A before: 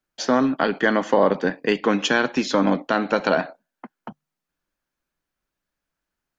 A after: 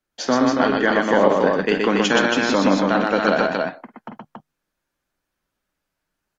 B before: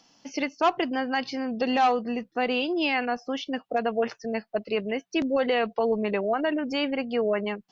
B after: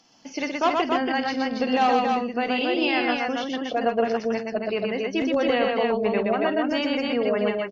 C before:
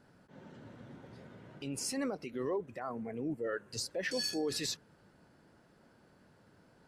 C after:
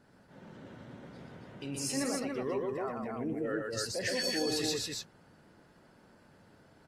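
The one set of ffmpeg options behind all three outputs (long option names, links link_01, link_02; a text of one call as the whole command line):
ffmpeg -i in.wav -af "aecho=1:1:49|122|279:0.224|0.708|0.668" -ar 48000 -c:a aac -b:a 48k out.aac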